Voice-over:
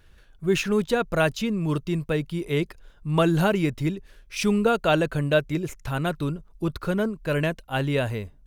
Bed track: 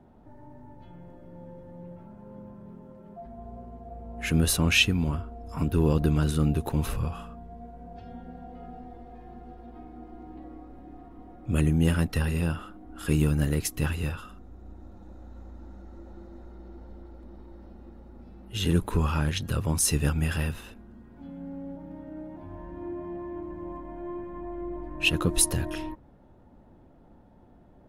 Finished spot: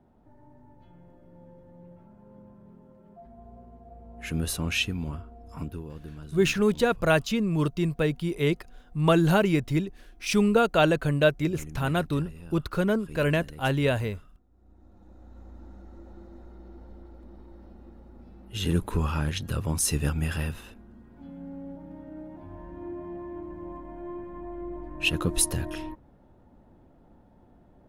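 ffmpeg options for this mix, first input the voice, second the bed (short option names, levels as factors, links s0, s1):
-filter_complex "[0:a]adelay=5900,volume=1[s0];[1:a]volume=3.55,afade=t=out:st=5.57:d=0.27:silence=0.237137,afade=t=in:st=14.49:d=1.08:silence=0.141254[s1];[s0][s1]amix=inputs=2:normalize=0"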